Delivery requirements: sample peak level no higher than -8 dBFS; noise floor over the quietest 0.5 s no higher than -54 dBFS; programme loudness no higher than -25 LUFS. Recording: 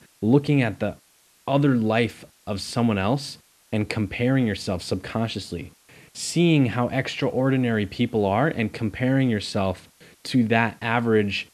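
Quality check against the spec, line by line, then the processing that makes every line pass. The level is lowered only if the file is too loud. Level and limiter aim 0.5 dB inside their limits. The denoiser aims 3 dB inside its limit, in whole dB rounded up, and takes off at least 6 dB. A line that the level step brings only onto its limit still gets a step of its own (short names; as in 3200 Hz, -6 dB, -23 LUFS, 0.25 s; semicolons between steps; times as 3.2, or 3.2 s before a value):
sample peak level -4.0 dBFS: fail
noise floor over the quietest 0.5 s -58 dBFS: OK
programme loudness -23.5 LUFS: fail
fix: gain -2 dB; limiter -8.5 dBFS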